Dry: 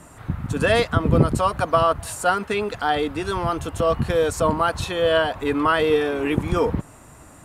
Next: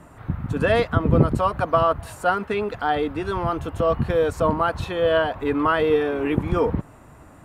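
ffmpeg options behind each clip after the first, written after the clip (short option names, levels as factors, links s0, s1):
-af "equalizer=f=8100:w=0.48:g=-12.5"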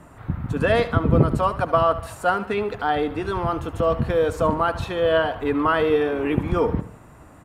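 -af "aecho=1:1:74|148|222|296:0.188|0.081|0.0348|0.015"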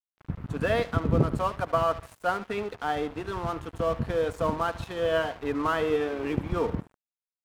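-af "aeval=exprs='sgn(val(0))*max(abs(val(0))-0.0168,0)':c=same,volume=0.531"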